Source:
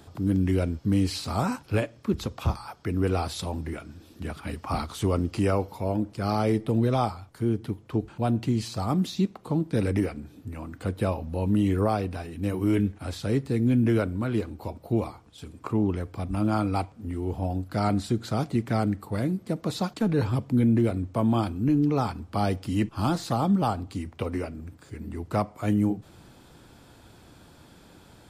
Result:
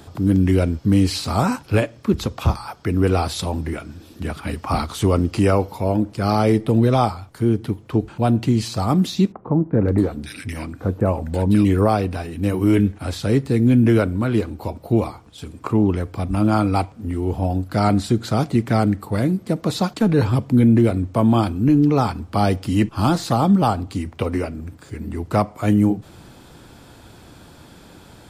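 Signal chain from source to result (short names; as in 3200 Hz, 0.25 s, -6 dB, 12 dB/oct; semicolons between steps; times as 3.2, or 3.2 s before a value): 9.32–11.65 bands offset in time lows, highs 0.53 s, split 1600 Hz; gain +7.5 dB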